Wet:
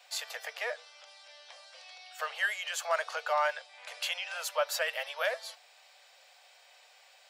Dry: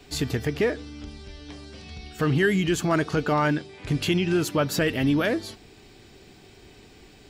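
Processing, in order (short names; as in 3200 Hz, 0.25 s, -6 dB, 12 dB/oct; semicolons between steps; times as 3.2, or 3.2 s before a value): steep high-pass 520 Hz 96 dB/oct; gain -4 dB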